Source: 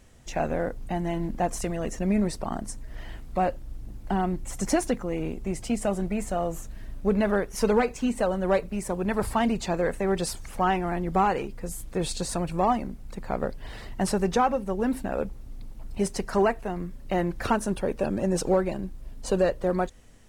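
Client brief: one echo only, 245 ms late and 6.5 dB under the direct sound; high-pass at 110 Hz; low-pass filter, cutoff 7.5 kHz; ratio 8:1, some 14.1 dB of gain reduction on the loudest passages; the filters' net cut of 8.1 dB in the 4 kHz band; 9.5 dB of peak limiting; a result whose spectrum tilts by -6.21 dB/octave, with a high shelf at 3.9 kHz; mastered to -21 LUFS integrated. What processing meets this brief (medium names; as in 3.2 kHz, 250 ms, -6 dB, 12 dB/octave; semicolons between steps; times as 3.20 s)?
high-pass 110 Hz; low-pass 7.5 kHz; treble shelf 3.9 kHz -6.5 dB; peaking EQ 4 kHz -6.5 dB; compression 8:1, threshold -33 dBFS; peak limiter -29.5 dBFS; delay 245 ms -6.5 dB; trim +19 dB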